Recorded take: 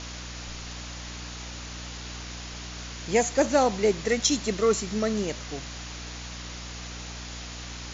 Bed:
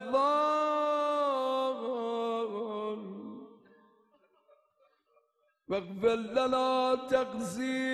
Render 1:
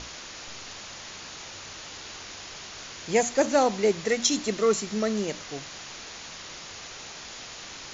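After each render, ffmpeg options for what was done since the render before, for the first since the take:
ffmpeg -i in.wav -af "bandreject=frequency=60:width_type=h:width=6,bandreject=frequency=120:width_type=h:width=6,bandreject=frequency=180:width_type=h:width=6,bandreject=frequency=240:width_type=h:width=6,bandreject=frequency=300:width_type=h:width=6" out.wav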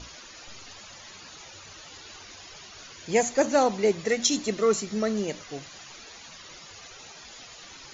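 ffmpeg -i in.wav -af "afftdn=noise_reduction=12:noise_floor=-42" out.wav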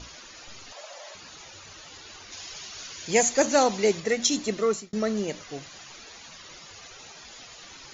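ffmpeg -i in.wav -filter_complex "[0:a]asettb=1/sr,asplit=3[link_01][link_02][link_03];[link_01]atrim=end=0.724[link_04];[link_02]atrim=start=0.72:end=1.15,asetpts=PTS-STARTPTS,afade=type=in:duration=0.004:curve=qsin,afade=type=out:start_time=0.426:duration=0.004:curve=qsin,highpass=frequency=600:width_type=q:width=5.5[link_05];[link_03]atrim=start=1.146[link_06];[link_04][link_05]acrossfade=duration=0.004:curve1=hsin:curve2=qsin[link_07];[link_07][link_06]acrossfade=duration=0.004:curve1=qsin:curve2=hsin,asettb=1/sr,asplit=3[link_08][link_09][link_10];[link_08]atrim=end=2.324[link_11];[link_09]atrim=start=2.32:end=4,asetpts=PTS-STARTPTS,afade=type=in:duration=0.004:curve=qsin,afade=type=out:start_time=1.676:duration=0.004:curve=qsin,highshelf=frequency=2500:gain=8[link_12];[link_10]atrim=start=3.996[link_13];[link_11][link_12]acrossfade=duration=0.004:curve1=hsin:curve2=qsin[link_14];[link_14][link_13]acrossfade=duration=0.004:curve1=qsin:curve2=hsin,asplit=2[link_15][link_16];[link_15]atrim=end=4.93,asetpts=PTS-STARTPTS,afade=type=out:start_time=4.5:duration=0.43:curve=qsin[link_17];[link_16]atrim=start=4.93,asetpts=PTS-STARTPTS,afade=type=in:duration=0.004:curve=hsin[link_18];[link_17][link_18]concat=n=2:v=0:a=1" out.wav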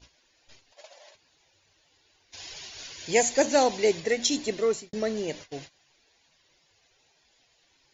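ffmpeg -i in.wav -af "agate=range=-19dB:threshold=-41dB:ratio=16:detection=peak,equalizer=frequency=200:width_type=o:width=0.33:gain=-8,equalizer=frequency=1250:width_type=o:width=0.33:gain=-11,equalizer=frequency=6300:width_type=o:width=0.33:gain=-4" out.wav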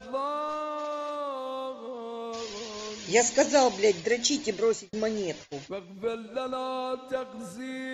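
ffmpeg -i in.wav -i bed.wav -filter_complex "[1:a]volume=-4dB[link_01];[0:a][link_01]amix=inputs=2:normalize=0" out.wav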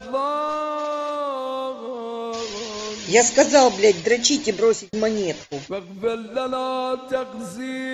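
ffmpeg -i in.wav -af "volume=7.5dB,alimiter=limit=-2dB:level=0:latency=1" out.wav

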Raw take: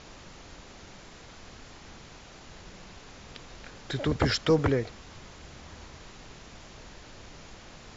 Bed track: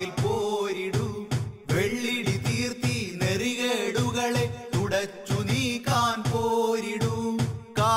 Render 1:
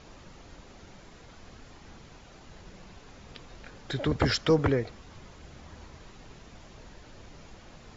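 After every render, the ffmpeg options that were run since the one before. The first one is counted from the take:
ffmpeg -i in.wav -af "afftdn=noise_reduction=6:noise_floor=-49" out.wav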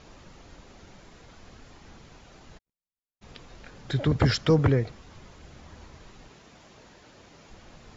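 ffmpeg -i in.wav -filter_complex "[0:a]asplit=3[link_01][link_02][link_03];[link_01]afade=type=out:start_time=2.57:duration=0.02[link_04];[link_02]agate=range=-59dB:threshold=-41dB:ratio=16:release=100:detection=peak,afade=type=in:start_time=2.57:duration=0.02,afade=type=out:start_time=3.21:duration=0.02[link_05];[link_03]afade=type=in:start_time=3.21:duration=0.02[link_06];[link_04][link_05][link_06]amix=inputs=3:normalize=0,asettb=1/sr,asplit=3[link_07][link_08][link_09];[link_07]atrim=end=3.784[link_10];[link_08]atrim=start=3.78:end=4.92,asetpts=PTS-STARTPTS,afade=type=in:duration=0.004:curve=qsin,afade=type=out:start_time=1.136:duration=0.004:curve=qsin,equalizer=frequency=130:width=1.2:gain=8[link_11];[link_09]atrim=start=4.916[link_12];[link_10][link_11]acrossfade=duration=0.004:curve1=hsin:curve2=qsin[link_13];[link_13][link_12]acrossfade=duration=0.004:curve1=qsin:curve2=hsin,asettb=1/sr,asplit=3[link_14][link_15][link_16];[link_14]atrim=end=6.284[link_17];[link_15]atrim=start=6.28:end=7.5,asetpts=PTS-STARTPTS,afade=type=in:duration=0.004:curve=qsin,afade=type=out:start_time=1.216:duration=0.004:curve=qsin,highpass=frequency=180:poles=1[link_18];[link_16]atrim=start=7.496[link_19];[link_17][link_18]acrossfade=duration=0.004:curve1=hsin:curve2=qsin[link_20];[link_20][link_19]acrossfade=duration=0.004:curve1=qsin:curve2=hsin" out.wav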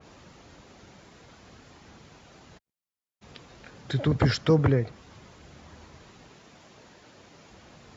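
ffmpeg -i in.wav -af "highpass=73,adynamicequalizer=threshold=0.00631:dfrequency=2400:dqfactor=0.7:tfrequency=2400:tqfactor=0.7:attack=5:release=100:ratio=0.375:range=2:mode=cutabove:tftype=highshelf" out.wav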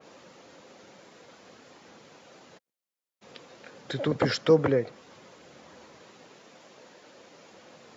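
ffmpeg -i in.wav -af "highpass=220,equalizer=frequency=520:width_type=o:width=0.27:gain=7" out.wav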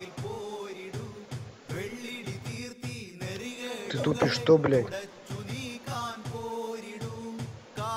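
ffmpeg -i in.wav -i bed.wav -filter_complex "[1:a]volume=-11dB[link_01];[0:a][link_01]amix=inputs=2:normalize=0" out.wav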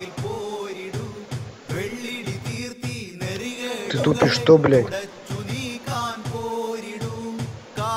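ffmpeg -i in.wav -af "volume=8dB,alimiter=limit=-2dB:level=0:latency=1" out.wav

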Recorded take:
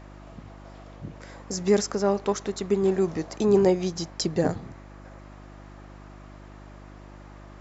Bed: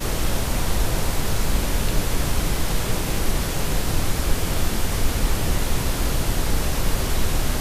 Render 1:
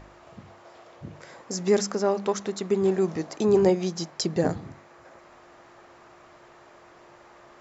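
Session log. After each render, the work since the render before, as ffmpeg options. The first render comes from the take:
ffmpeg -i in.wav -af "bandreject=frequency=50:width_type=h:width=4,bandreject=frequency=100:width_type=h:width=4,bandreject=frequency=150:width_type=h:width=4,bandreject=frequency=200:width_type=h:width=4,bandreject=frequency=250:width_type=h:width=4,bandreject=frequency=300:width_type=h:width=4" out.wav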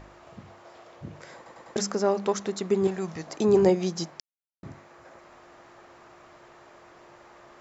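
ffmpeg -i in.wav -filter_complex "[0:a]asettb=1/sr,asplit=3[link_01][link_02][link_03];[link_01]atrim=end=2.874[link_04];[link_02]atrim=start=2.87:end=3.27,asetpts=PTS-STARTPTS,afade=type=in:duration=0.004:curve=qsin,afade=type=out:start_time=0.396:duration=0.004:curve=qsin,equalizer=frequency=340:width=0.84:gain=-10[link_05];[link_03]atrim=start=3.266[link_06];[link_04][link_05]acrossfade=duration=0.004:curve1=hsin:curve2=qsin[link_07];[link_07][link_06]acrossfade=duration=0.004:curve1=qsin:curve2=hsin,asplit=7[link_08][link_09][link_10][link_11][link_12][link_13][link_14];[link_08]atrim=end=1.462[link_15];[link_09]atrim=start=1.358:end=1.462[link_16];[link_10]atrim=start=1.358:end=1.462[link_17];[link_11]atrim=start=1.358:end=1.462[link_18];[link_12]atrim=start=1.758:end=4.2,asetpts=PTS-STARTPTS,afade=type=out:start_time=2.438:duration=0.004:curve=hsin[link_19];[link_13]atrim=start=4.2:end=4.63,asetpts=PTS-STARTPTS,volume=0[link_20];[link_14]atrim=start=4.63,asetpts=PTS-STARTPTS,afade=type=in:duration=0.004:curve=hsin[link_21];[link_15][link_16]acrossfade=duration=0.004:curve1=hsin:curve2=hsin[link_22];[link_22][link_17]acrossfade=duration=0.004:curve1=hsin:curve2=hsin[link_23];[link_23][link_18]acrossfade=duration=0.004:curve1=hsin:curve2=hsin[link_24];[link_19][link_20][link_21]concat=n=3:v=0:a=1[link_25];[link_24][link_25]acrossfade=duration=0.004:curve1=hsin:curve2=hsin" out.wav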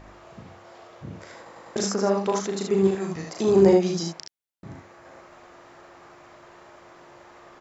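ffmpeg -i in.wav -af "aecho=1:1:36|66|77:0.596|0.422|0.562" out.wav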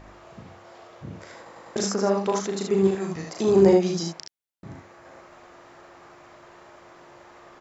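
ffmpeg -i in.wav -af anull out.wav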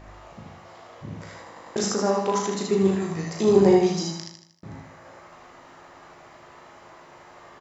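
ffmpeg -i in.wav -filter_complex "[0:a]asplit=2[link_01][link_02];[link_02]adelay=19,volume=-8dB[link_03];[link_01][link_03]amix=inputs=2:normalize=0,aecho=1:1:78|156|234|312|390|468:0.473|0.227|0.109|0.0523|0.0251|0.0121" out.wav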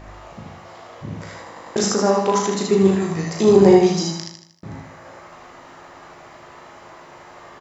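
ffmpeg -i in.wav -af "volume=5.5dB,alimiter=limit=-1dB:level=0:latency=1" out.wav

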